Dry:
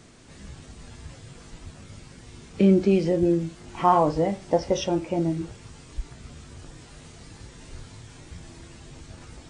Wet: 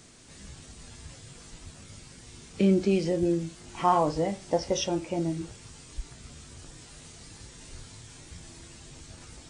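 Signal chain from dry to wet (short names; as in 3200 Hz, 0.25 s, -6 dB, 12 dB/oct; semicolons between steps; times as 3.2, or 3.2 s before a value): high shelf 3600 Hz +10 dB; gain -4.5 dB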